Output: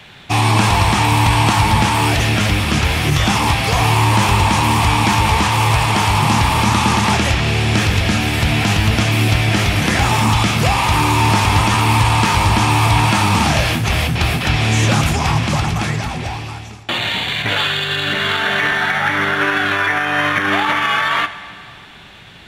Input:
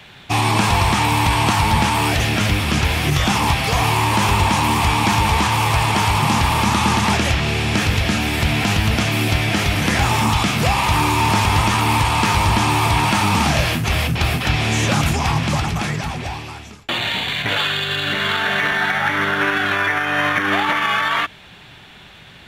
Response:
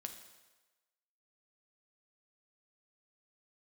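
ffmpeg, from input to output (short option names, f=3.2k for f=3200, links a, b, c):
-filter_complex "[0:a]asplit=2[a][b];[1:a]atrim=start_sample=2205,asetrate=22491,aresample=44100[c];[b][c]afir=irnorm=-1:irlink=0,volume=-4dB[d];[a][d]amix=inputs=2:normalize=0,volume=-2dB"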